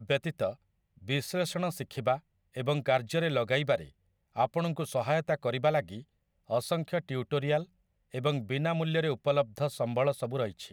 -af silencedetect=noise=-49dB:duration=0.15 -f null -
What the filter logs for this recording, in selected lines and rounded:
silence_start: 0.55
silence_end: 0.98 | silence_duration: 0.43
silence_start: 2.19
silence_end: 2.54 | silence_duration: 0.35
silence_start: 3.89
silence_end: 4.36 | silence_duration: 0.46
silence_start: 6.03
silence_end: 6.49 | silence_duration: 0.47
silence_start: 7.65
silence_end: 8.13 | silence_duration: 0.48